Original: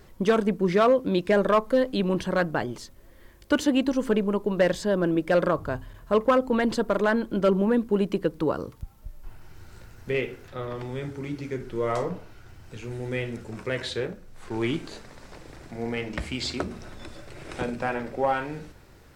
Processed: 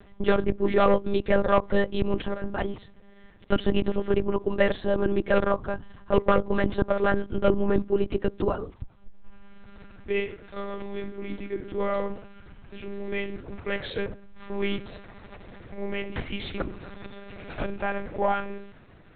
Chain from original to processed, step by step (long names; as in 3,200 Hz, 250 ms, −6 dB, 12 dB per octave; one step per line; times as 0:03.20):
0:02.25–0:02.76: compressor whose output falls as the input rises −27 dBFS, ratio −0.5
one-pitch LPC vocoder at 8 kHz 200 Hz